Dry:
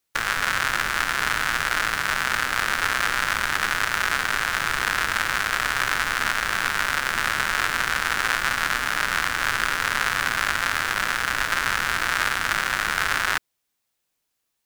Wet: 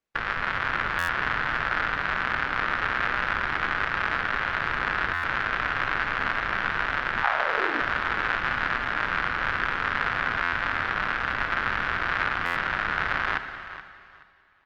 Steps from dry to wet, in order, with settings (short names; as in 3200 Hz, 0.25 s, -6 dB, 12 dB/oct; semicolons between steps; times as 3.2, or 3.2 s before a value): high shelf 3200 Hz -4.5 dB; 7.22–7.8 resonant high-pass 870 Hz -> 280 Hz, resonance Q 4.9; air absorption 310 m; on a send: feedback echo 0.426 s, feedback 23%, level -14 dB; on the sum: Schroeder reverb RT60 2.2 s, combs from 26 ms, DRR 10.5 dB; downsampling 22050 Hz; stuck buffer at 0.98/5.13/10.42/12.45, samples 512, times 8; Opus 24 kbps 48000 Hz